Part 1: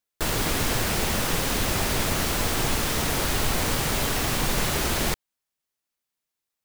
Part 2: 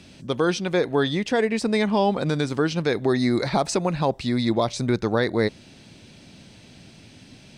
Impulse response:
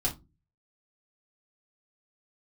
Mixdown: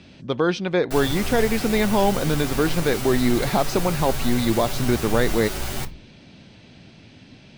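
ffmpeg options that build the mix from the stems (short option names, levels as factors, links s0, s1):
-filter_complex "[0:a]acrusher=bits=6:dc=4:mix=0:aa=0.000001,asplit=2[s0][s1];[s1]adelay=9.2,afreqshift=1.1[s2];[s0][s2]amix=inputs=2:normalize=1,adelay=700,volume=0.531,asplit=2[s3][s4];[s4]volume=0.335[s5];[1:a]lowpass=4300,volume=1.12[s6];[2:a]atrim=start_sample=2205[s7];[s5][s7]afir=irnorm=-1:irlink=0[s8];[s3][s6][s8]amix=inputs=3:normalize=0"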